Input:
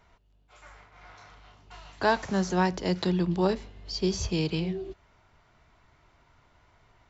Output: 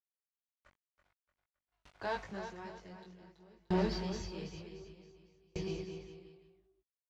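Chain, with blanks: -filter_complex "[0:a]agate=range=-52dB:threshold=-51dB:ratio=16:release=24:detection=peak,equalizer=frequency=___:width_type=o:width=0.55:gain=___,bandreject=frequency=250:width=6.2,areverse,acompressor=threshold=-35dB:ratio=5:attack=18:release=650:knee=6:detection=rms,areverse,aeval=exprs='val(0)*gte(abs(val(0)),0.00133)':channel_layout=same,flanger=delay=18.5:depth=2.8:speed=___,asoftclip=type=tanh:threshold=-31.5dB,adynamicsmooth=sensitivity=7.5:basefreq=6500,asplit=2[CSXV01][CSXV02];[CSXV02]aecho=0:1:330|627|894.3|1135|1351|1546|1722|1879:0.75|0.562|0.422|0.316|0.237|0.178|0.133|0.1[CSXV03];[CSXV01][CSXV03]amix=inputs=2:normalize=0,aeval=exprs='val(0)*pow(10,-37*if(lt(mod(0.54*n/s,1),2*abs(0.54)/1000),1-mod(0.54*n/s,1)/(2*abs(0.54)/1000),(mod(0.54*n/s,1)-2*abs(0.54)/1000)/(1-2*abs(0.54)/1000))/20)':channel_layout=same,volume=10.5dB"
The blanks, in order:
2300, 3, 0.82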